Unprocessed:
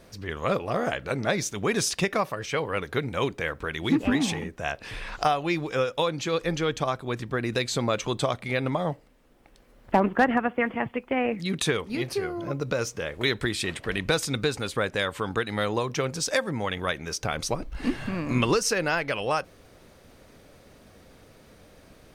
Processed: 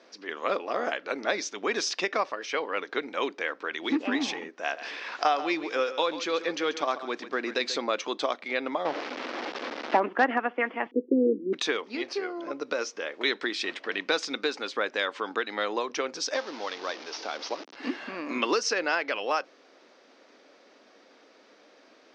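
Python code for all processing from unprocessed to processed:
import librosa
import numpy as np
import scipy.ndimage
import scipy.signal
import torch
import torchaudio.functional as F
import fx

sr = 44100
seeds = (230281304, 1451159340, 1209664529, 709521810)

y = fx.chain(x, sr, fx.law_mismatch(coded='mu'),
    fx.echo_single(ms=137, db=-13.0), at=(4.63, 7.79))
y = fx.chain(y, sr, fx.zero_step(step_db=-24.0),
    fx.lowpass(hz=3900.0, slope=12), at=(8.85, 9.97))
y = fx.chain(y, sr, fx.cheby1_bandpass(low_hz=180.0, high_hz=500.0, order=4),
    fx.peak_eq(hz=310.0, db=14.0, octaves=1.4), at=(10.91, 11.53))
y = fx.chain(y, sr, fx.delta_mod(bps=32000, step_db=-30.0),
    fx.highpass(hz=310.0, slope=6),
    fx.peak_eq(hz=1900.0, db=-5.5, octaves=1.6), at=(16.34, 17.76))
y = scipy.signal.sosfilt(scipy.signal.ellip(3, 1.0, 40, [270.0, 5600.0], 'bandpass', fs=sr, output='sos'), y)
y = fx.low_shelf(y, sr, hz=350.0, db=-5.5)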